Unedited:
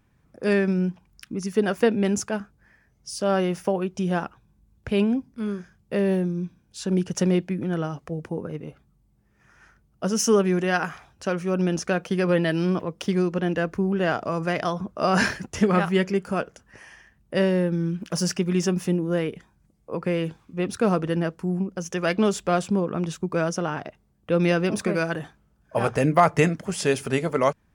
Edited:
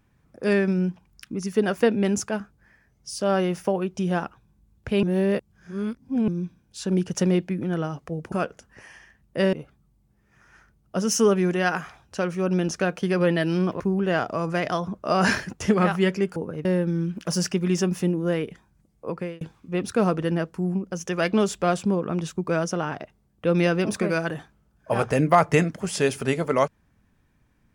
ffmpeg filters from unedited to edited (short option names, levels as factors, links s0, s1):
-filter_complex "[0:a]asplit=9[s0][s1][s2][s3][s4][s5][s6][s7][s8];[s0]atrim=end=5.032[s9];[s1]atrim=start=5.028:end=6.282,asetpts=PTS-STARTPTS,areverse[s10];[s2]atrim=start=6.278:end=8.322[s11];[s3]atrim=start=16.288:end=17.502[s12];[s4]atrim=start=8.608:end=12.882[s13];[s5]atrim=start=13.728:end=16.292[s14];[s6]atrim=start=8.318:end=8.612[s15];[s7]atrim=start=17.498:end=20.26,asetpts=PTS-STARTPTS,afade=t=out:st=2.432:d=0.33[s16];[s8]atrim=start=20.26,asetpts=PTS-STARTPTS,afade=t=in:d=0.004:c=hsin[s17];[s9][s10]acrossfade=d=0.004:c1=hsin:c2=hsin[s18];[s18][s11]acrossfade=d=0.004:c1=hsin:c2=hsin[s19];[s19][s12]acrossfade=d=0.004:c1=hsin:c2=hsin[s20];[s20][s13]acrossfade=d=0.004:c1=hsin:c2=hsin[s21];[s21][s14]acrossfade=d=0.004:c1=hsin:c2=hsin[s22];[s22][s15]acrossfade=d=0.004:c1=hsin:c2=hsin[s23];[s16][s17]concat=n=2:v=0:a=1[s24];[s23][s24]acrossfade=d=0.004:c1=hsin:c2=hsin"